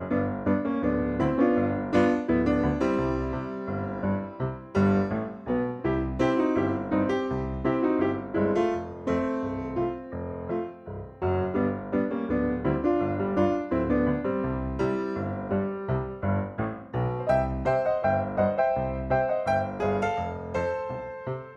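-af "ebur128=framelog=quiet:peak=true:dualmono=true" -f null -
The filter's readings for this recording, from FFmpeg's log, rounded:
Integrated loudness:
  I:         -24.3 LUFS
  Threshold: -34.3 LUFS
Loudness range:
  LRA:         3.7 LU
  Threshold: -44.3 LUFS
  LRA low:   -26.4 LUFS
  LRA high:  -22.7 LUFS
True peak:
  Peak:      -10.2 dBFS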